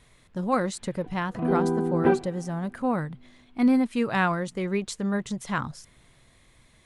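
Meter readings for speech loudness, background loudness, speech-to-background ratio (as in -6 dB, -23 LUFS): -28.0 LUFS, -25.5 LUFS, -2.5 dB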